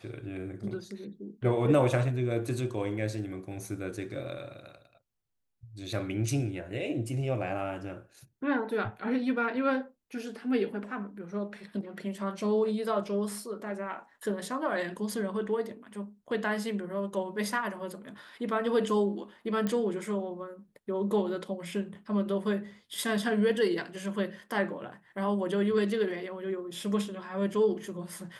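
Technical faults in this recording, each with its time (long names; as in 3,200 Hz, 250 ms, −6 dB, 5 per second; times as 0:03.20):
0:19.67: click −18 dBFS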